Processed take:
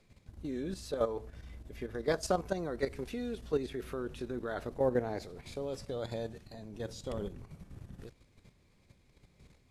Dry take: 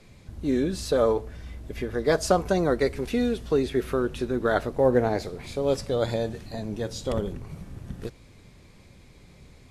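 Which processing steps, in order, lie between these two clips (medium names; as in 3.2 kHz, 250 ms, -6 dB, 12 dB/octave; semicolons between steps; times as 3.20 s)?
level held to a coarse grid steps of 10 dB; trim -6.5 dB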